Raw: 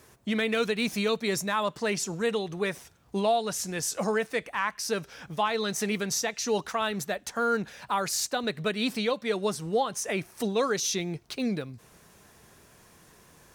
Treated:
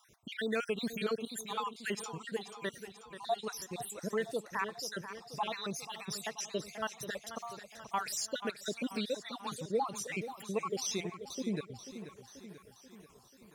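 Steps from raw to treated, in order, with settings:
time-frequency cells dropped at random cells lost 60%
feedback echo with a swinging delay time 486 ms, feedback 58%, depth 73 cents, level −11.5 dB
level −5 dB

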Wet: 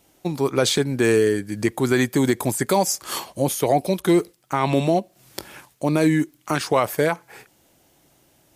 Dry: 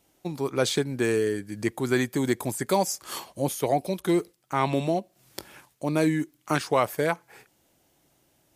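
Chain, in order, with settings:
brickwall limiter −15 dBFS, peak gain reduction 6 dB
level +7 dB

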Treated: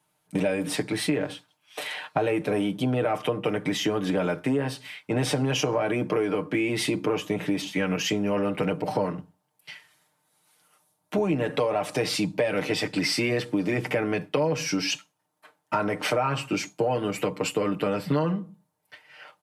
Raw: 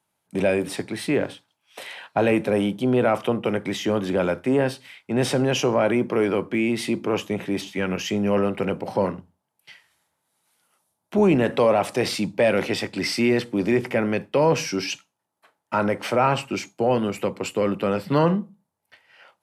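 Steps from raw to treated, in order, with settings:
comb filter 6.6 ms, depth 75%
downward compressor, threshold −24 dBFS, peak gain reduction 13 dB
level +2 dB

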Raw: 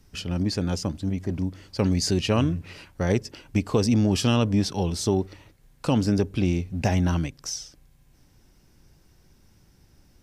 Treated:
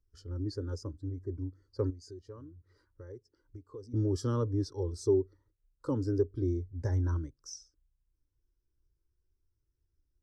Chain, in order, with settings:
0:01.90–0:03.94: downward compressor 3 to 1, threshold −35 dBFS, peak gain reduction 13.5 dB
phaser with its sweep stopped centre 710 Hz, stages 6
every bin expanded away from the loudest bin 1.5 to 1
level −2 dB

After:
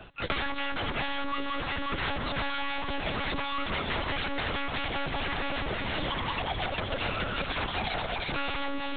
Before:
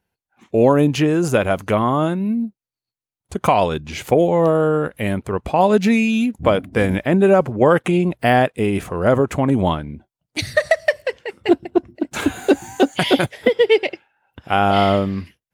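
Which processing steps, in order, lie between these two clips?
in parallel at 0 dB: brickwall limiter −11.5 dBFS, peak gain reduction 9 dB
on the sum: wrap-around overflow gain 11 dB
delay that swaps between a low-pass and a high-pass 315 ms, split 950 Hz, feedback 81%, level −9 dB
wrong playback speed 45 rpm record played at 78 rpm
gain into a clipping stage and back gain 23 dB
one-pitch LPC vocoder at 8 kHz 280 Hz
multiband upward and downward compressor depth 100%
level −6 dB

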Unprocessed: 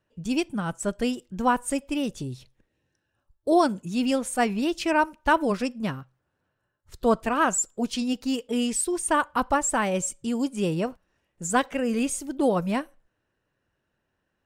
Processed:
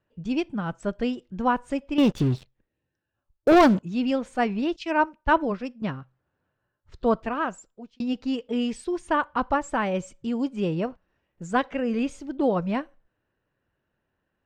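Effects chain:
high-frequency loss of the air 180 metres
0:01.98–0:03.80: leveller curve on the samples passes 3
0:04.76–0:05.82: multiband upward and downward expander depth 100%
0:07.07–0:08.00: fade out

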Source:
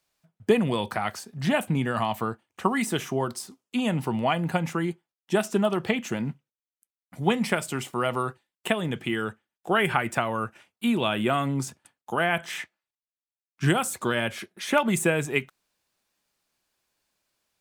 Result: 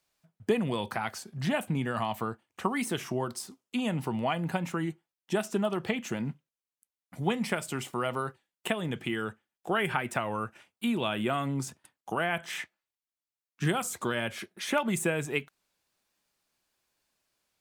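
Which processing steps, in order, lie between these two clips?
in parallel at +1 dB: downward compressor, threshold −30 dBFS, peak gain reduction 14.5 dB
on the sum: wow of a warped record 33 1/3 rpm, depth 100 cents
level −8 dB

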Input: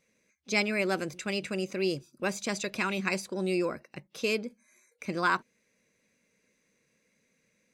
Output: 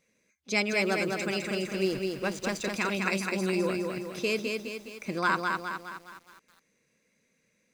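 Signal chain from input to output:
0:01.75–0:02.64: slack as between gear wheels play −36.5 dBFS
feedback echo at a low word length 207 ms, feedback 55%, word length 9 bits, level −3.5 dB

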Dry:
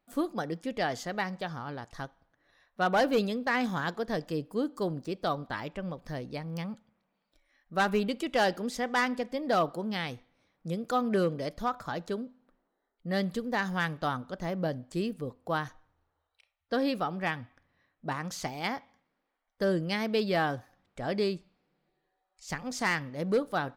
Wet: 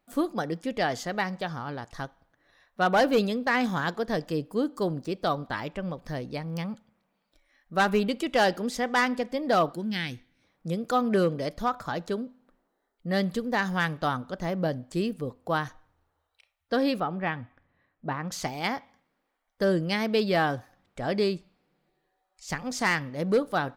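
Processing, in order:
0:09.74–0:10.43: gain on a spectral selection 370–1,400 Hz −10 dB
0:17.00–0:18.32: high-frequency loss of the air 310 metres
level +3.5 dB

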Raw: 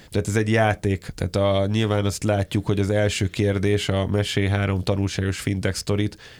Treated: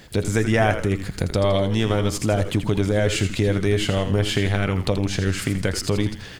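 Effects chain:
camcorder AGC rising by 15 dB per second
echo with shifted repeats 82 ms, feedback 43%, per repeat −98 Hz, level −9 dB

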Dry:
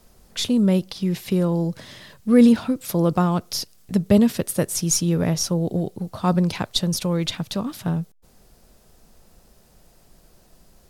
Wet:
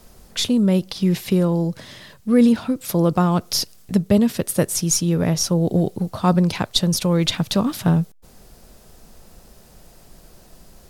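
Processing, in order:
speech leveller within 5 dB 0.5 s
level +2 dB

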